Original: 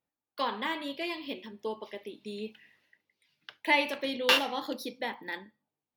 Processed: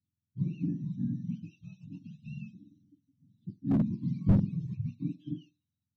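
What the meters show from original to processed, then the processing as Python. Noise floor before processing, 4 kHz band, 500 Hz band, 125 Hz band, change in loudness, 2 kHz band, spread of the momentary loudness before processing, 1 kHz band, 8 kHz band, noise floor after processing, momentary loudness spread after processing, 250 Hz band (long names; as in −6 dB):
below −85 dBFS, below −30 dB, −15.0 dB, can't be measured, −1.5 dB, below −25 dB, 17 LU, −22.0 dB, below −25 dB, below −85 dBFS, 21 LU, +7.0 dB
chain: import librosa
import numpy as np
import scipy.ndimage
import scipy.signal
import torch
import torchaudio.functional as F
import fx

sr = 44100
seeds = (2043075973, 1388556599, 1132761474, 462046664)

y = fx.octave_mirror(x, sr, pivot_hz=750.0)
y = scipy.signal.sosfilt(scipy.signal.cheby2(4, 40, [480.0, 2100.0], 'bandstop', fs=sr, output='sos'), y)
y = fx.slew_limit(y, sr, full_power_hz=13.0)
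y = F.gain(torch.from_numpy(y), 3.0).numpy()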